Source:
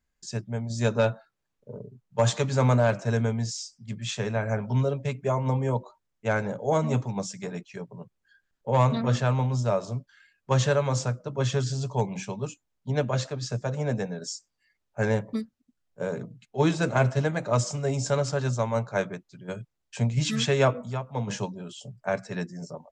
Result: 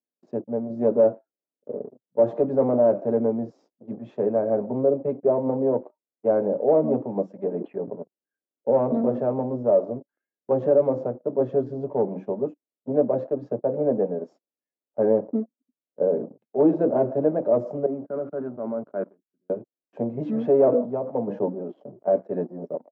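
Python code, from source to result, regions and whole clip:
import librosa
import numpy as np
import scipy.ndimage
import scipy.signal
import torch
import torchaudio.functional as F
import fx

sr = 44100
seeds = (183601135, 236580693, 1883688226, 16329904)

y = fx.chain(x, sr, fx.lowpass(hz=2700.0, slope=24),
    fx.sustainer(db_per_s=38.0), at=(7.49, 7.95))
y = fx.chain(y, sr, fx.level_steps(step_db=16),
    fx.cabinet(low_hz=140.0, low_slope=12, high_hz=2700.0, hz=(210.0, 510.0, 860.0, 1400.0), db=(4, -8, -7, 10)),
    fx.band_widen(depth_pct=100), at=(17.86, 19.5))
y = fx.chain(y, sr, fx.lowpass(hz=5900.0, slope=12),
    fx.sustainer(db_per_s=99.0), at=(20.26, 22.08))
y = fx.leveller(y, sr, passes=3)
y = scipy.signal.sosfilt(scipy.signal.cheby1(2, 1.0, [270.0, 610.0], 'bandpass', fs=sr, output='sos'), y)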